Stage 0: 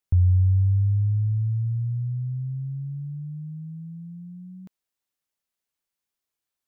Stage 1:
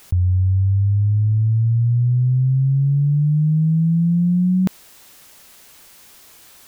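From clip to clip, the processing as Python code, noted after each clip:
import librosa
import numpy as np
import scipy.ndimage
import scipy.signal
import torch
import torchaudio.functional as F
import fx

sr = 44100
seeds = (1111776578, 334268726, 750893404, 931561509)

y = fx.env_flatten(x, sr, amount_pct=100)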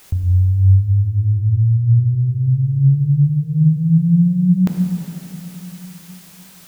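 y = fx.rev_plate(x, sr, seeds[0], rt60_s=3.7, hf_ratio=1.0, predelay_ms=0, drr_db=1.5)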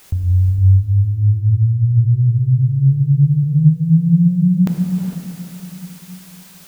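y = fx.rev_gated(x, sr, seeds[1], gate_ms=480, shape='rising', drr_db=6.5)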